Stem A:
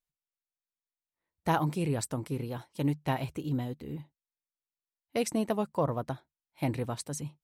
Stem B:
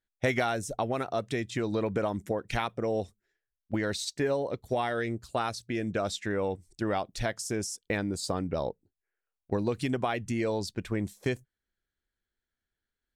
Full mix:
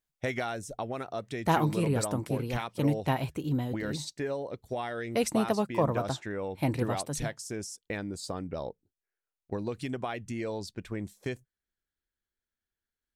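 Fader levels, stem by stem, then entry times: +2.0 dB, -5.0 dB; 0.00 s, 0.00 s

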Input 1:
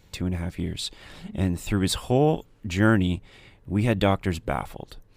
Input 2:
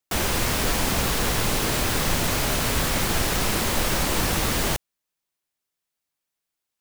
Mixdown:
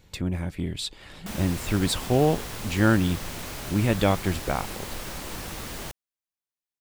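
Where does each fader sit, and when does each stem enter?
-0.5 dB, -12.5 dB; 0.00 s, 1.15 s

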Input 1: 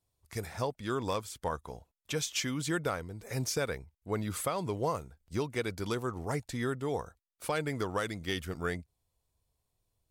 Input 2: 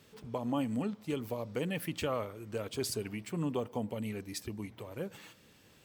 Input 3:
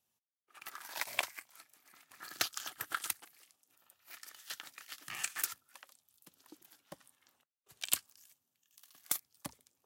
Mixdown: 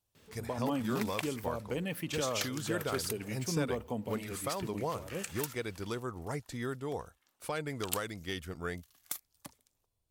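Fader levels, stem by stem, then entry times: -4.0 dB, -1.0 dB, -4.5 dB; 0.00 s, 0.15 s, 0.00 s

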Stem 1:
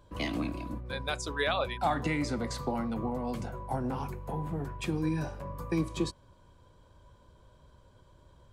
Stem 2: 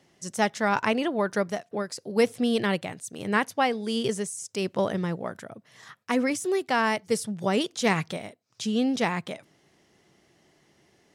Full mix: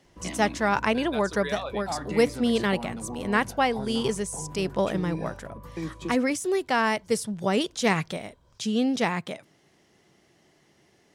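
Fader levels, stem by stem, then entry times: -4.0 dB, +0.5 dB; 0.05 s, 0.00 s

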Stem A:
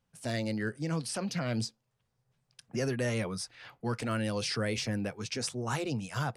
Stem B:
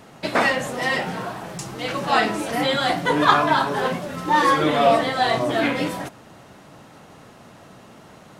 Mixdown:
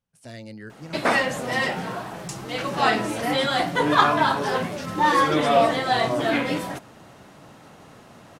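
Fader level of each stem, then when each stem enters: -6.5 dB, -1.5 dB; 0.00 s, 0.70 s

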